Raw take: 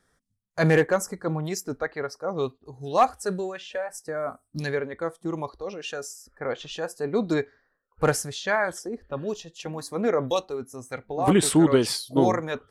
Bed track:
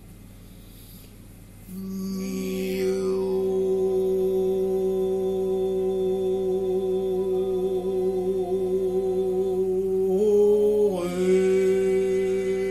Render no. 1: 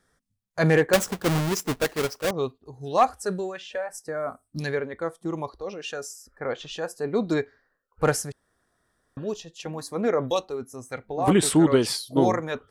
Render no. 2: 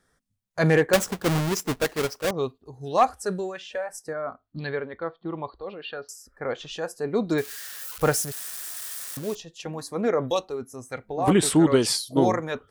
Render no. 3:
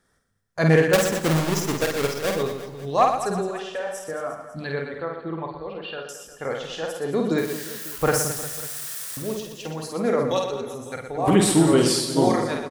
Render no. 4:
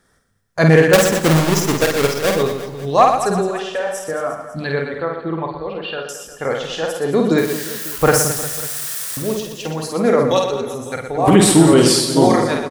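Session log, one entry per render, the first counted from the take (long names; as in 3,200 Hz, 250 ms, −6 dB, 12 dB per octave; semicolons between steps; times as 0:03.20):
0:00.93–0:02.31: each half-wave held at its own peak; 0:08.32–0:09.17: fill with room tone
0:04.13–0:06.09: Chebyshev low-pass with heavy ripple 4,500 Hz, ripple 3 dB; 0:07.38–0:09.35: spike at every zero crossing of −26 dBFS; 0:11.64–0:12.20: dynamic equaliser 7,400 Hz, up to +6 dB, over −44 dBFS, Q 0.88
reverse bouncing-ball delay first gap 50 ms, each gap 1.4×, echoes 5; four-comb reverb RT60 1.8 s, combs from 33 ms, DRR 13.5 dB
level +7.5 dB; brickwall limiter −1 dBFS, peak gain reduction 2.5 dB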